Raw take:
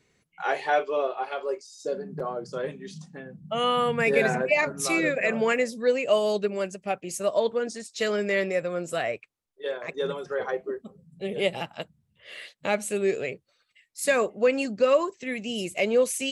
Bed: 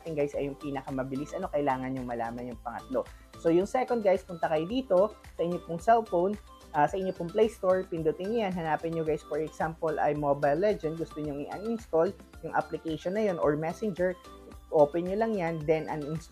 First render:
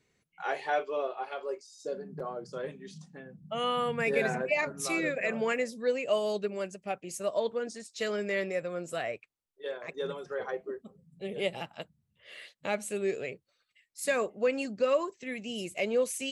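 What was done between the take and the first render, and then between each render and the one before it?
gain -6 dB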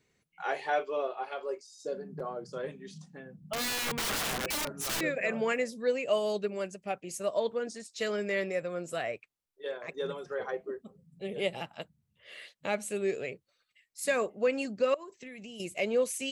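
3.53–5.01 wrapped overs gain 27.5 dB; 14.94–15.6 compressor 8:1, threshold -41 dBFS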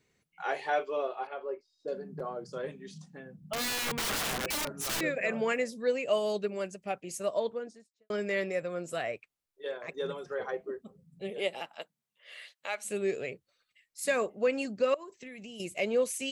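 1.27–1.88 air absorption 410 m; 7.25–8.1 studio fade out; 11.29–12.84 HPF 280 Hz -> 930 Hz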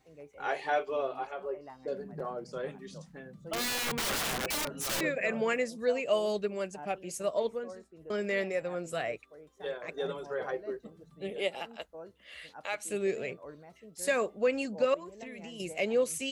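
add bed -21 dB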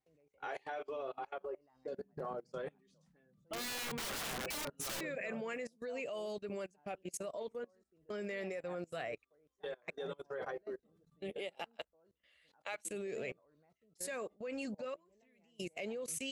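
level quantiser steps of 20 dB; upward expander 1.5:1, over -60 dBFS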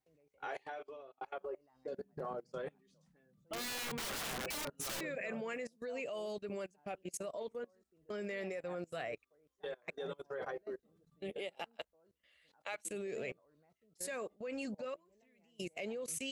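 0.53–1.21 fade out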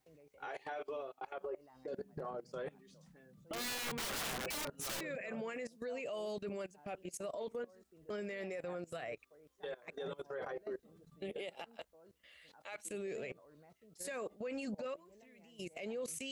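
in parallel at +1 dB: negative-ratio compressor -44 dBFS, ratio -0.5; on the sum: limiter -34.5 dBFS, peak gain reduction 14.5 dB

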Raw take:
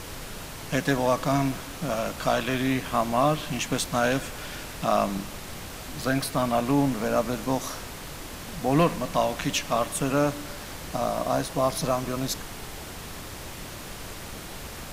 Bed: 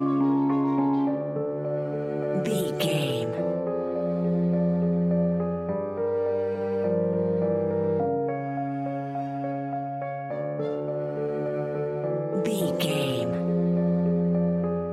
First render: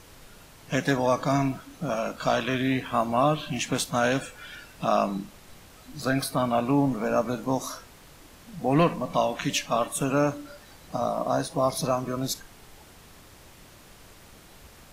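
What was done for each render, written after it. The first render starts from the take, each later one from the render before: noise print and reduce 12 dB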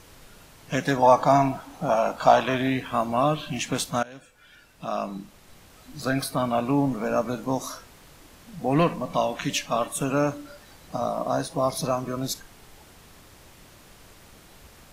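1.02–2.7 bell 820 Hz +13.5 dB 0.75 oct; 4.03–5.98 fade in, from -23 dB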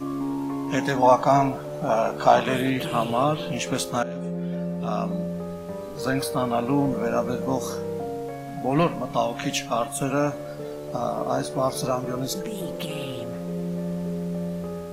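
add bed -5.5 dB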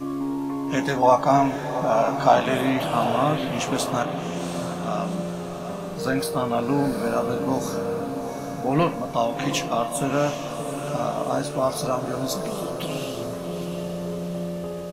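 doubler 26 ms -11 dB; diffused feedback echo 0.76 s, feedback 53%, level -8 dB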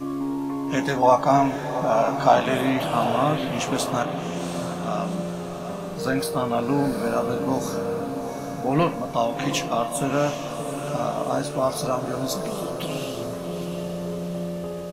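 nothing audible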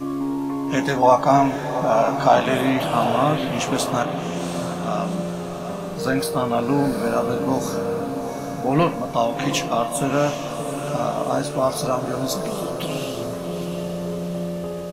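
gain +2.5 dB; limiter -3 dBFS, peak gain reduction 2.5 dB

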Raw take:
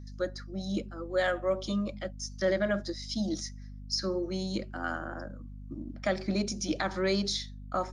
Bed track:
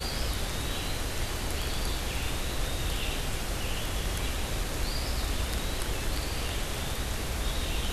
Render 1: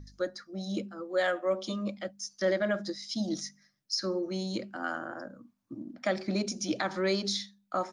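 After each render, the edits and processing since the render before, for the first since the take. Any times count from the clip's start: de-hum 50 Hz, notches 5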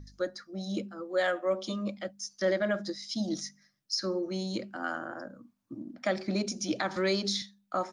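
6.96–7.42 three-band squash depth 40%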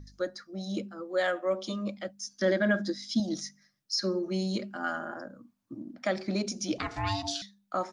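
2.27–3.2 small resonant body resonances 250/1600/3400 Hz, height 12 dB, ringing for 40 ms; 3.93–5.17 comb 4.9 ms; 6.78–7.42 ring modulator 490 Hz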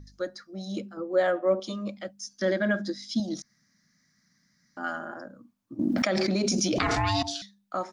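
0.97–1.6 tilt shelf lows +7 dB, about 1500 Hz; 3.42–4.77 room tone; 5.79–7.23 fast leveller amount 100%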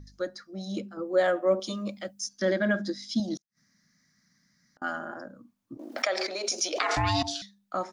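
0.99–2.29 high shelf 5900 Hz +9.5 dB; 3.37–4.82 flipped gate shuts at -44 dBFS, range -37 dB; 5.77–6.97 HPF 460 Hz 24 dB/oct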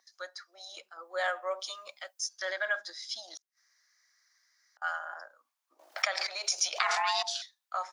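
inverse Chebyshev high-pass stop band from 170 Hz, stop band 70 dB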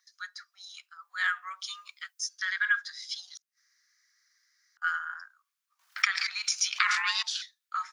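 steep high-pass 1200 Hz 36 dB/oct; dynamic EQ 1800 Hz, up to +6 dB, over -46 dBFS, Q 0.72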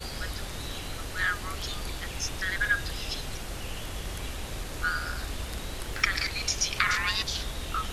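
add bed track -4.5 dB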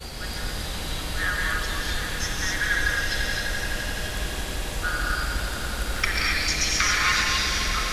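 swelling echo 85 ms, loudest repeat 5, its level -13 dB; non-linear reverb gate 0.29 s rising, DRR -2.5 dB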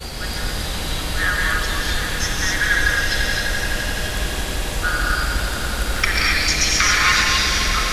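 gain +6 dB; limiter -2 dBFS, peak gain reduction 1 dB

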